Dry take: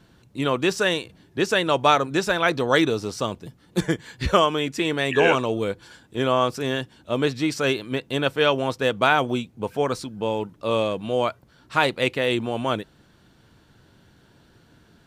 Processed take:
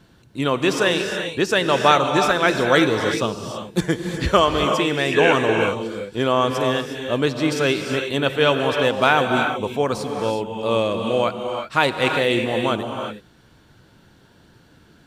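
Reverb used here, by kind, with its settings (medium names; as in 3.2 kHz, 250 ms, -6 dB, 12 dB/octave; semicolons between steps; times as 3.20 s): gated-style reverb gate 390 ms rising, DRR 4 dB; trim +2 dB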